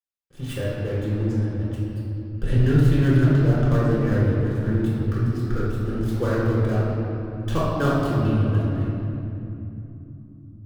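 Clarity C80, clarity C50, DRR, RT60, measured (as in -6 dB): -0.5 dB, -3.0 dB, -9.0 dB, 2.9 s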